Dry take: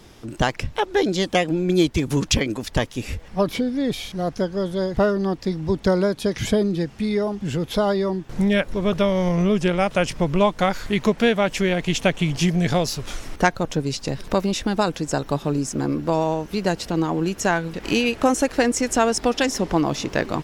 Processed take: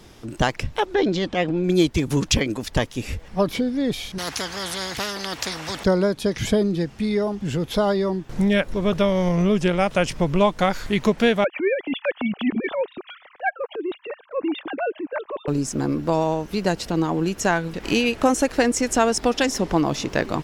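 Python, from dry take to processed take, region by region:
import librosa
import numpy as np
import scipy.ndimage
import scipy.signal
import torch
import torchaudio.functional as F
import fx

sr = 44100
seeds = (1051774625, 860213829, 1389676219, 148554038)

y = fx.chain(x, sr, fx.lowpass(hz=4000.0, slope=12),
    fx.transient(attack_db=-9, sustain_db=3), at=(0.94, 1.64))
y = fx.chain(y, sr, fx.highpass(hz=130.0, slope=12),
    fx.spectral_comp(ratio=4.0), at=(4.18, 5.84))
y = fx.chain(y, sr, fx.sine_speech(),
    fx.transient(attack_db=-11, sustain_db=-5), at=(11.44, 15.48))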